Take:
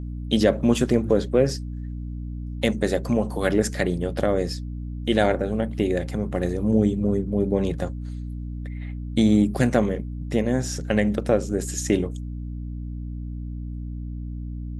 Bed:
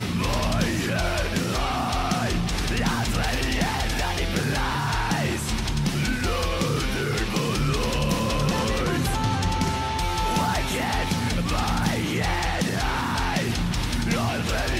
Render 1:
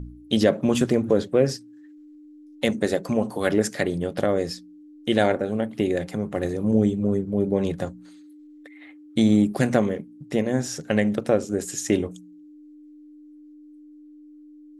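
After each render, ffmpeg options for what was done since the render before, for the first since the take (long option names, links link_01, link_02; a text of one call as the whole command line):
ffmpeg -i in.wav -af "bandreject=frequency=60:width_type=h:width=4,bandreject=frequency=120:width_type=h:width=4,bandreject=frequency=180:width_type=h:width=4,bandreject=frequency=240:width_type=h:width=4" out.wav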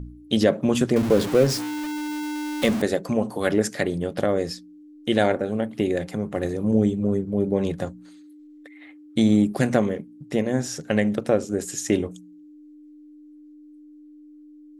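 ffmpeg -i in.wav -filter_complex "[0:a]asettb=1/sr,asplit=3[link_01][link_02][link_03];[link_01]atrim=end=0.964[link_04];[link_02]atrim=start=0.96:end=2.82,asetpts=PTS-STARTPTS,afade=type=in:duration=0.004:curve=qsin,afade=type=out:start_time=1.856:duration=0.004:curve=qsin,aeval=exprs='val(0)+0.5*0.0631*sgn(val(0))':channel_layout=same[link_05];[link_03]atrim=start=2.816[link_06];[link_04][link_05]acrossfade=duration=0.004:curve1=hsin:curve2=qsin[link_07];[link_07][link_06]acrossfade=duration=0.004:curve1=qsin:curve2=hsin" out.wav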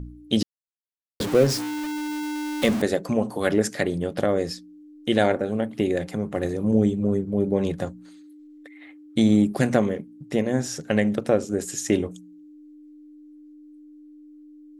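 ffmpeg -i in.wav -filter_complex "[0:a]asplit=3[link_01][link_02][link_03];[link_01]atrim=end=0.43,asetpts=PTS-STARTPTS,afade=type=out:start_time=0.426:duration=0.004:curve=hsin[link_04];[link_02]atrim=start=0.43:end=1.2,asetpts=PTS-STARTPTS,volume=0[link_05];[link_03]atrim=start=1.2,asetpts=PTS-STARTPTS,afade=type=in:duration=0.004:curve=hsin[link_06];[link_04][link_05][link_06]concat=n=3:v=0:a=1" out.wav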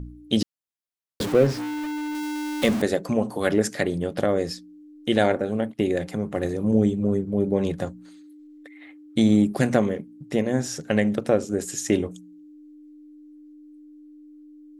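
ffmpeg -i in.wav -filter_complex "[0:a]asettb=1/sr,asplit=3[link_01][link_02][link_03];[link_01]atrim=end=1.324[link_04];[link_02]atrim=start=1.32:end=2.15,asetpts=PTS-STARTPTS,afade=type=in:duration=0.004:curve=qsin,afade=type=out:start_time=0.826:duration=0.004:curve=qsin,acrossover=split=3200[link_05][link_06];[link_06]acompressor=threshold=-41dB:ratio=4:attack=1:release=60[link_07];[link_05][link_07]amix=inputs=2:normalize=0[link_08];[link_03]atrim=start=2.146[link_09];[link_04][link_08]acrossfade=duration=0.004:curve1=hsin:curve2=qsin[link_10];[link_10][link_09]acrossfade=duration=0.004:curve1=qsin:curve2=hsin,asettb=1/sr,asplit=3[link_11][link_12][link_13];[link_11]atrim=end=5.164[link_14];[link_12]atrim=start=5.16:end=5.79,asetpts=PTS-STARTPTS,afade=type=in:duration=0.004:curve=qsin,afade=type=out:start_time=0.626:duration=0.004:curve=qsin,agate=range=-18dB:threshold=-37dB:ratio=16:release=100:detection=peak[link_15];[link_13]atrim=start=5.786[link_16];[link_14][link_15]acrossfade=duration=0.004:curve1=hsin:curve2=qsin[link_17];[link_17][link_16]acrossfade=duration=0.004:curve1=qsin:curve2=hsin" out.wav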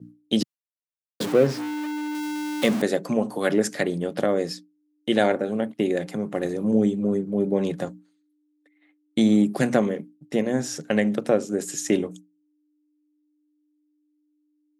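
ffmpeg -i in.wav -af "agate=range=-33dB:threshold=-34dB:ratio=3:detection=peak,highpass=frequency=140:width=0.5412,highpass=frequency=140:width=1.3066" out.wav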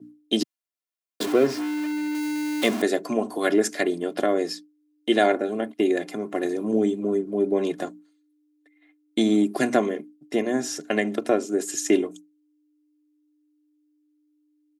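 ffmpeg -i in.wav -af "highpass=200,aecho=1:1:2.9:0.59" out.wav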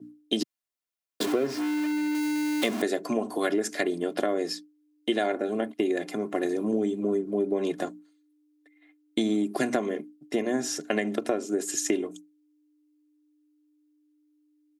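ffmpeg -i in.wav -af "acompressor=threshold=-22dB:ratio=6" out.wav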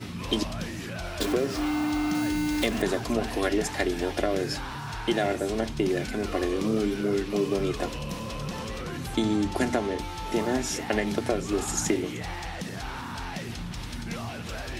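ffmpeg -i in.wav -i bed.wav -filter_complex "[1:a]volume=-10.5dB[link_01];[0:a][link_01]amix=inputs=2:normalize=0" out.wav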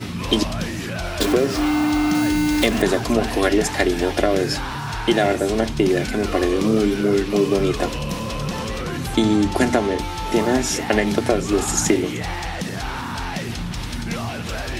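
ffmpeg -i in.wav -af "volume=8dB" out.wav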